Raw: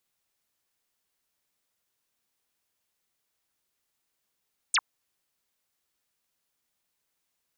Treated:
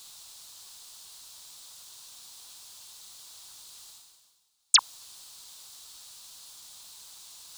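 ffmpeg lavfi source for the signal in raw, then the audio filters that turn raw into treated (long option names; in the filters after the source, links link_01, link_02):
-f lavfi -i "aevalsrc='0.1*clip(t/0.002,0,1)*clip((0.05-t)/0.002,0,1)*sin(2*PI*9800*0.05/log(870/9800)*(exp(log(870/9800)*t/0.05)-1))':duration=0.05:sample_rate=44100"
-af "equalizer=frequency=250:width_type=o:width=1:gain=-6,equalizer=frequency=500:width_type=o:width=1:gain=-5,equalizer=frequency=1000:width_type=o:width=1:gain=6,equalizer=frequency=2000:width_type=o:width=1:gain=-9,equalizer=frequency=4000:width_type=o:width=1:gain=12,equalizer=frequency=8000:width_type=o:width=1:gain=8,areverse,acompressor=mode=upward:threshold=-28dB:ratio=2.5,areverse"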